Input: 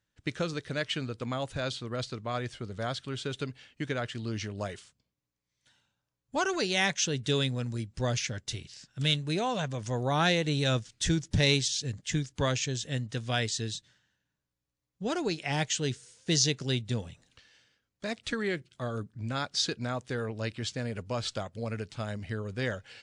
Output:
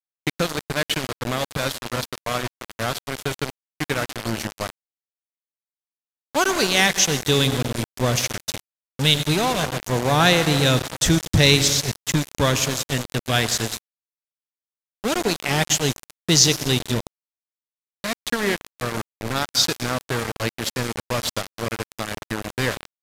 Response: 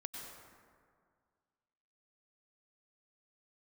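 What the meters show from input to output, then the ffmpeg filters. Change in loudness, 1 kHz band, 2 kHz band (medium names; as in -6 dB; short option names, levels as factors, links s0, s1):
+9.5 dB, +10.0 dB, +10.0 dB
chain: -filter_complex "[0:a]highshelf=f=7500:g=6.5,asplit=3[s0][s1][s2];[s1]adelay=101,afreqshift=-42,volume=0.0794[s3];[s2]adelay=202,afreqshift=-84,volume=0.0263[s4];[s0][s3][s4]amix=inputs=3:normalize=0,asplit=2[s5][s6];[1:a]atrim=start_sample=2205[s7];[s6][s7]afir=irnorm=-1:irlink=0,volume=0.891[s8];[s5][s8]amix=inputs=2:normalize=0,aeval=exprs='val(0)*gte(abs(val(0)),0.0473)':c=same,aresample=32000,aresample=44100,volume=1.88"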